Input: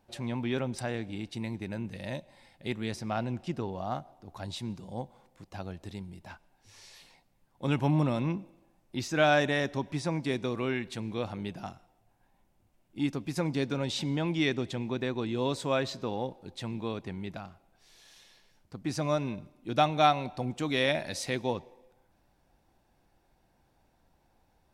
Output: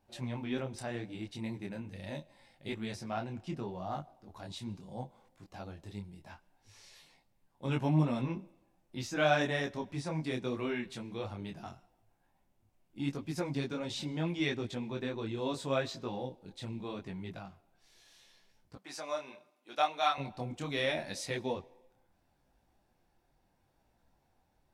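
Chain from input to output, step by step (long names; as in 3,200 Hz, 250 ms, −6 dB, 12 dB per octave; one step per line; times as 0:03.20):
0:16.18–0:16.84: dynamic equaliser 1,200 Hz, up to −6 dB, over −48 dBFS, Q 0.94
0:18.75–0:20.18: high-pass filter 630 Hz 12 dB per octave
micro pitch shift up and down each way 26 cents
level −1 dB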